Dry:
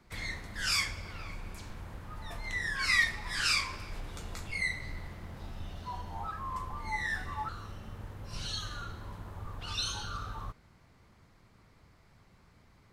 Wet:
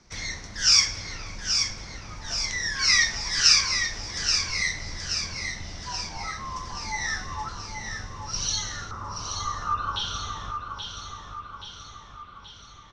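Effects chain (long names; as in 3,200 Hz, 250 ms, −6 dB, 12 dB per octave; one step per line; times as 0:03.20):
low-pass with resonance 5,800 Hz, resonance Q 9.9, from 0:08.91 1,200 Hz, from 0:09.96 3,400 Hz
repeating echo 828 ms, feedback 56%, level −6.5 dB
level +2.5 dB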